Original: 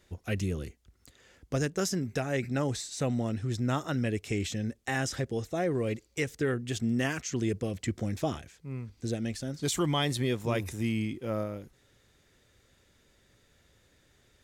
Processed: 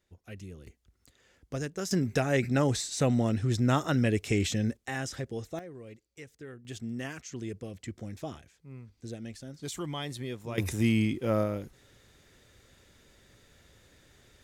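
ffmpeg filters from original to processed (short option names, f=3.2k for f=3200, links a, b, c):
-af "asetnsamples=n=441:p=0,asendcmd='0.67 volume volume -5dB;1.91 volume volume 4dB;4.77 volume volume -4dB;5.59 volume volume -16dB;6.65 volume volume -8dB;10.58 volume volume 5dB',volume=-13dB"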